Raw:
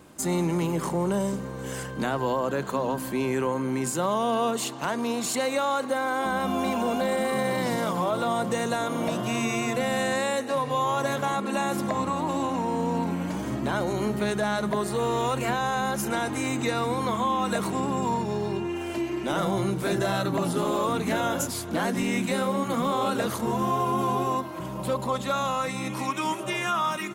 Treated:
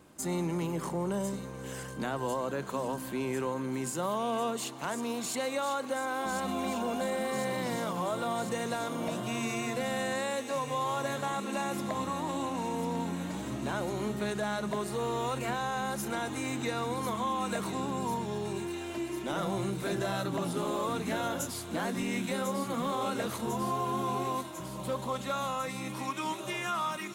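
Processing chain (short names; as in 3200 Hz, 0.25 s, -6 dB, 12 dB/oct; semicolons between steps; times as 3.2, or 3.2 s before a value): thin delay 1.048 s, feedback 76%, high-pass 2900 Hz, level -7 dB; gain -6.5 dB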